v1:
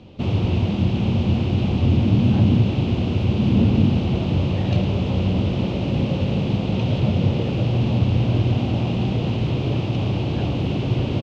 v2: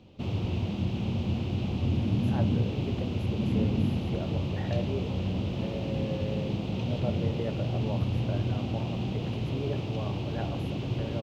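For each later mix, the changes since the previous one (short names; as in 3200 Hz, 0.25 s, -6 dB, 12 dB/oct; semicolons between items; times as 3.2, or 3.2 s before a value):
background -10.0 dB; master: remove air absorption 57 m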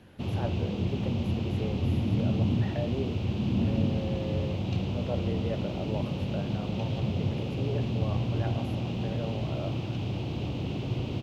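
speech: entry -1.95 s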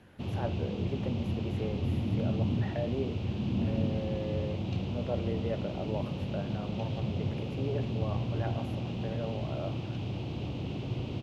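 background -3.5 dB; master: add high shelf 9900 Hz -6 dB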